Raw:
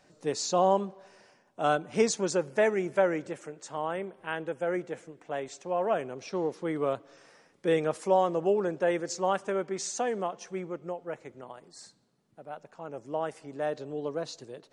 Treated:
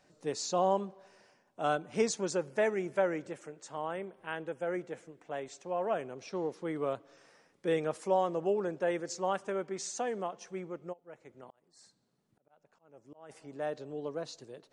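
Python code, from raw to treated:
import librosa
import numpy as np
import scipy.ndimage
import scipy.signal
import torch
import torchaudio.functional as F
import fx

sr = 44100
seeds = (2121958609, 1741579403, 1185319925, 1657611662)

y = fx.auto_swell(x, sr, attack_ms=631.0, at=(10.92, 13.29), fade=0.02)
y = y * 10.0 ** (-4.5 / 20.0)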